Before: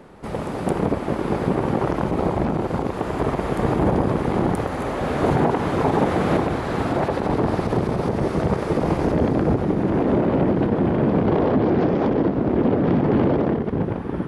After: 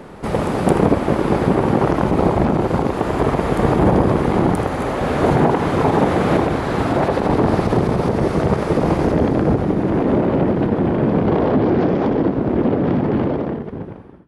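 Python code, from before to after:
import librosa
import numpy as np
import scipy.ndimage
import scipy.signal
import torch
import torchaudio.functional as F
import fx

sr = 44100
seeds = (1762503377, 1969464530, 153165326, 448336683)

p1 = fx.fade_out_tail(x, sr, length_s=2.8)
p2 = fx.rider(p1, sr, range_db=5, speed_s=2.0)
p3 = p2 + fx.echo_single(p2, sr, ms=80, db=-13.0, dry=0)
y = F.gain(torch.from_numpy(p3), 4.0).numpy()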